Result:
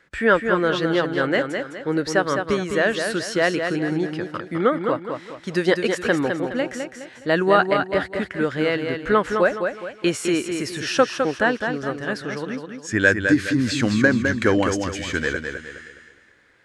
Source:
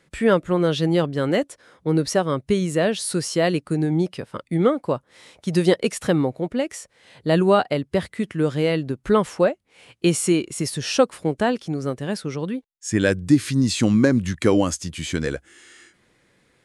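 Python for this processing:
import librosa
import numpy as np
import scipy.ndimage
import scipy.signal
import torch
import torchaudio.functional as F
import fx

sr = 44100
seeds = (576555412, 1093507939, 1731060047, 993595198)

y = fx.graphic_eq_15(x, sr, hz=(160, 1600, 10000), db=(-8, 11, -10))
y = fx.echo_feedback(y, sr, ms=208, feedback_pct=38, wet_db=-6.0)
y = y * librosa.db_to_amplitude(-1.0)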